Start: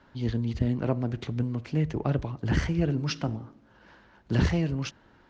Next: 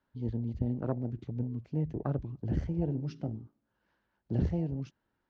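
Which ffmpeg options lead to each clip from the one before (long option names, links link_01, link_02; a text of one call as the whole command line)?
ffmpeg -i in.wav -af "afwtdn=0.0282,volume=-5.5dB" out.wav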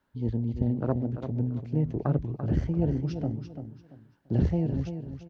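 ffmpeg -i in.wav -af "aecho=1:1:340|680|1020:0.355|0.0958|0.0259,volume=5dB" out.wav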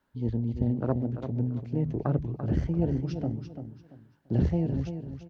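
ffmpeg -i in.wav -af "bandreject=frequency=50:width_type=h:width=6,bandreject=frequency=100:width_type=h:width=6,bandreject=frequency=150:width_type=h:width=6" out.wav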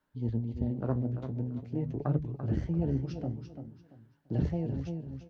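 ffmpeg -i in.wav -af "flanger=delay=6.5:depth=9.9:regen=56:speed=0.46:shape=sinusoidal" out.wav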